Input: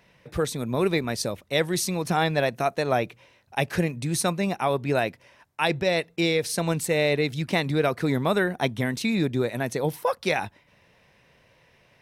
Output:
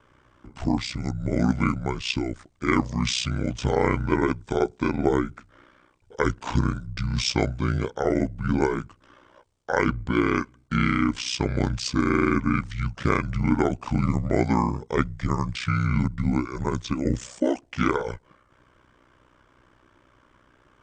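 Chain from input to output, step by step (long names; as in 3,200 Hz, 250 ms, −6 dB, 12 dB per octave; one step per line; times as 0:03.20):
wrong playback speed 78 rpm record played at 45 rpm
ring modulation 31 Hz
level +3.5 dB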